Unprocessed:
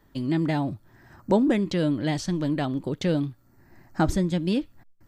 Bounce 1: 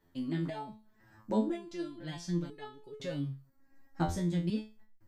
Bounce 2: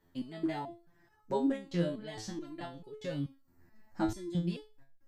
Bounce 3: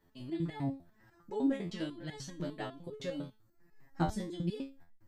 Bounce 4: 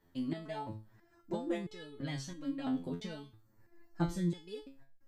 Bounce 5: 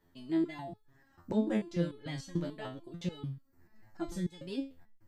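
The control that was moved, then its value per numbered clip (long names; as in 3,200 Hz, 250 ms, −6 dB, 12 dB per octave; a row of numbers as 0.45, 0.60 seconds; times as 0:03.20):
step-sequenced resonator, speed: 2, 4.6, 10, 3, 6.8 Hertz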